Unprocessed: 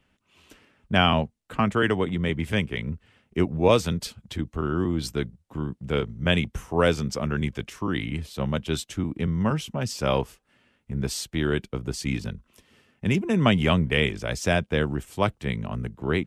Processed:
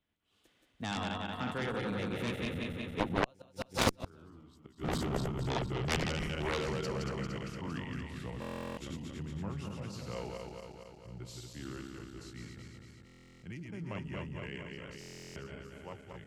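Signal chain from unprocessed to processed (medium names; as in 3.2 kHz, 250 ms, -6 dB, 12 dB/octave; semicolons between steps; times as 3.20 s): backward echo that repeats 103 ms, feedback 80%, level -3.5 dB; Doppler pass-by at 4.26 s, 40 m/s, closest 9.2 m; inverted gate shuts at -21 dBFS, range -40 dB; Chebyshev shaper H 7 -8 dB, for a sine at -20 dBFS; buffer glitch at 8.40/13.05/14.99 s, samples 1024, times 15; trim +4 dB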